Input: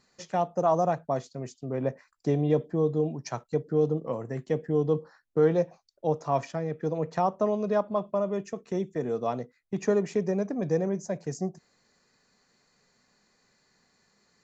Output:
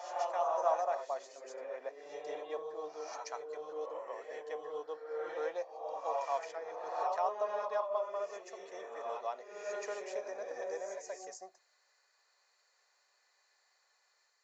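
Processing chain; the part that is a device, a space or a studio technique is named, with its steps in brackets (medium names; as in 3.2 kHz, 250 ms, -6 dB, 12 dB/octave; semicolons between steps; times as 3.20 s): ghost voice (reverse; reverberation RT60 1.1 s, pre-delay 119 ms, DRR -0.5 dB; reverse; high-pass 600 Hz 24 dB/octave); trim -7 dB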